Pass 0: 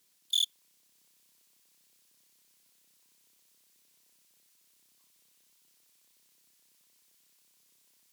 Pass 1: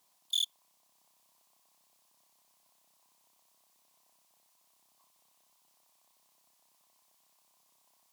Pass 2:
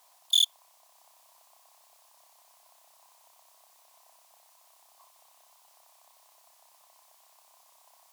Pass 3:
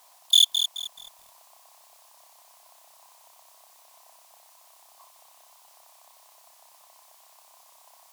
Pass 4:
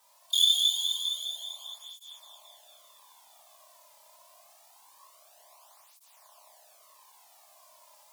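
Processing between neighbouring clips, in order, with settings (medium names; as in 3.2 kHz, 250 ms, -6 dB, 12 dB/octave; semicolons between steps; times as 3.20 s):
high-order bell 840 Hz +14.5 dB 1.1 oct; gain riding; trim -2.5 dB
FFT filter 120 Hz 0 dB, 230 Hz -15 dB, 670 Hz +13 dB, 3.3 kHz +7 dB; trim +1.5 dB
bit-crushed delay 214 ms, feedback 35%, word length 8-bit, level -8 dB; trim +5.5 dB
plate-style reverb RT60 4.2 s, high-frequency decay 0.85×, DRR -5 dB; cancelling through-zero flanger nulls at 0.25 Hz, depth 2.8 ms; trim -5.5 dB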